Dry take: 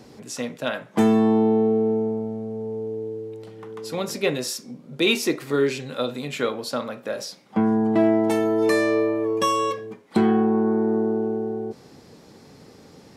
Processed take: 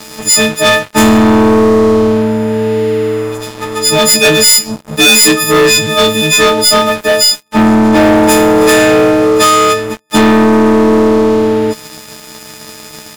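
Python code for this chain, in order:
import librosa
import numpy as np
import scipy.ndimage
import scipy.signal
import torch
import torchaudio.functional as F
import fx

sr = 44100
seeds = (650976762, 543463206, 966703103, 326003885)

y = fx.freq_snap(x, sr, grid_st=6)
y = fx.leveller(y, sr, passes=5)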